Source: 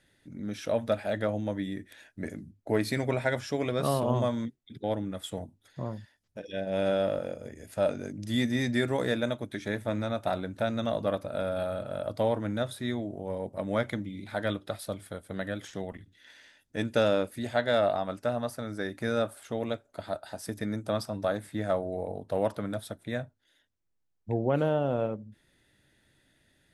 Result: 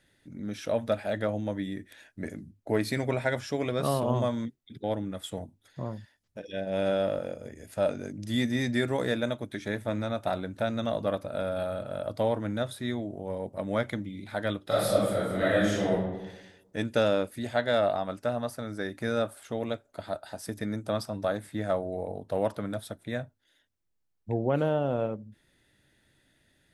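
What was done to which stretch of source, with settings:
14.64–15.92 reverb throw, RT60 1.1 s, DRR -11 dB

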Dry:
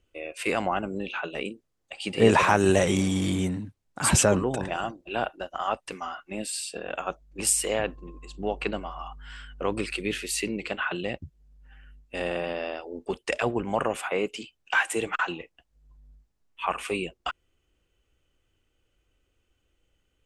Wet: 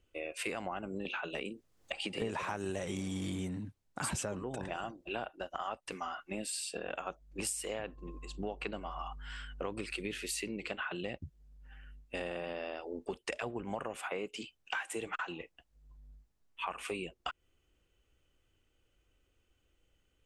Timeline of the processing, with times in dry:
1.05–2.22 three-band squash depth 100%
whole clip: compressor 6:1, threshold -33 dBFS; gain -2 dB

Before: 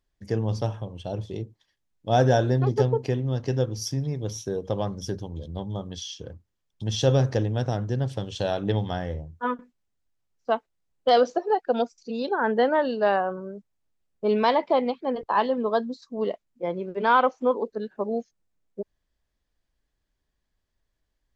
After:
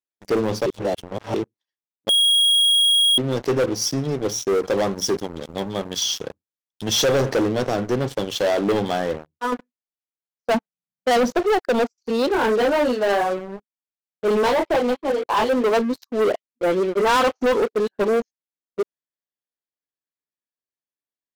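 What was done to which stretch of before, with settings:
0.66–1.34 reverse
2.09–3.18 bleep 3290 Hz -16 dBFS
4.55–7.06 high shelf 3600 Hz +7 dB
9.08–9.52 fade out, to -8.5 dB
10.54–11.33 resonant low shelf 260 Hz +10 dB, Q 3
12.28–15.64 detuned doubles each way 21 cents
16.31–18.08 dispersion highs, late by 44 ms, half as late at 1900 Hz
whole clip: HPF 240 Hz 12 dB/oct; dynamic EQ 360 Hz, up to +6 dB, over -36 dBFS, Q 1.3; sample leveller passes 5; gain -7.5 dB

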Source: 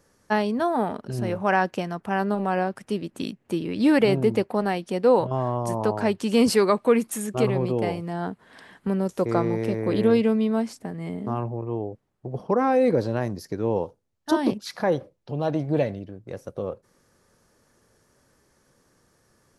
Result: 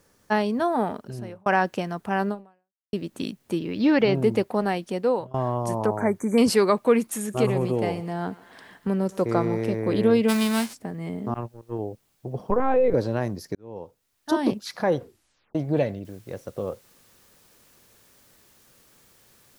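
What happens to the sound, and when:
0.86–1.46 fade out
2.29–2.93 fade out exponential
3.59–4.15 elliptic low-pass 6300 Hz
4.69–5.34 fade out equal-power, to -23.5 dB
5.86–6.38 brick-wall FIR band-stop 2400–5900 Hz
7.04–9.61 thinning echo 0.121 s, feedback 69%, level -18 dB
10.28–10.73 spectral whitening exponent 0.3
11.34–11.79 gate -28 dBFS, range -27 dB
12.5–12.94 LPC vocoder at 8 kHz pitch kept
13.55–14.46 fade in
14.97 tape stop 0.58 s
16.05 noise floor step -70 dB -59 dB

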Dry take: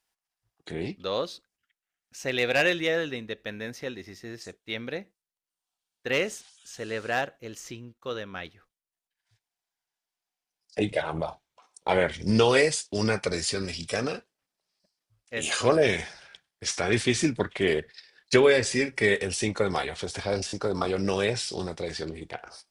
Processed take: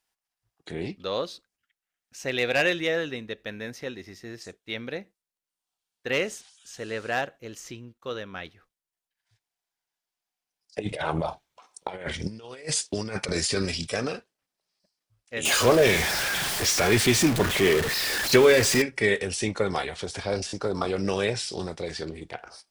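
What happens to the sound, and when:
10.79–13.87 negative-ratio compressor -29 dBFS, ratio -0.5
15.45–18.82 zero-crossing step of -21.5 dBFS

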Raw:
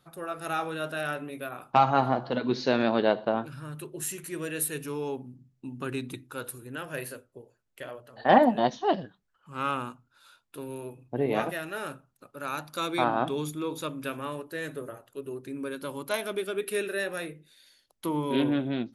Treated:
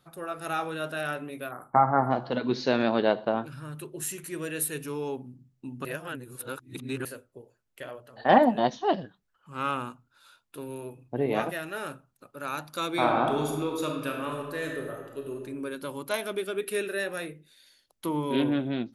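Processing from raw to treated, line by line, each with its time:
1.51–2.11 spectral delete 2200–7400 Hz
5.85–7.05 reverse
12.89–15.36 reverb throw, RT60 1.2 s, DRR 1.5 dB

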